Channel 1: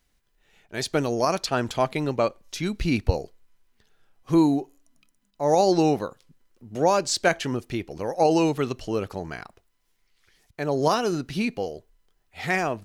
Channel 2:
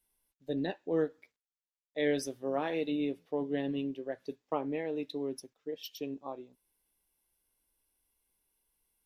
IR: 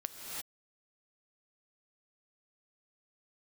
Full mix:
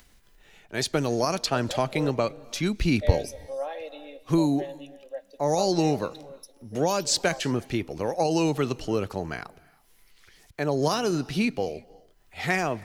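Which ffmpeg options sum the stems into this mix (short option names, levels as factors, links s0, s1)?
-filter_complex "[0:a]acrossover=split=190|3000[s0][s1][s2];[s1]acompressor=threshold=0.0708:ratio=6[s3];[s0][s3][s2]amix=inputs=3:normalize=0,volume=1.12,asplit=2[s4][s5];[s5]volume=0.0944[s6];[1:a]highpass=f=610:t=q:w=4.9,highshelf=f=3700:g=11.5,aecho=1:1:3.7:0.65,adelay=1050,volume=0.282,asplit=2[s7][s8];[s8]volume=0.237[s9];[2:a]atrim=start_sample=2205[s10];[s6][s9]amix=inputs=2:normalize=0[s11];[s11][s10]afir=irnorm=-1:irlink=0[s12];[s4][s7][s12]amix=inputs=3:normalize=0,acompressor=mode=upward:threshold=0.00447:ratio=2.5"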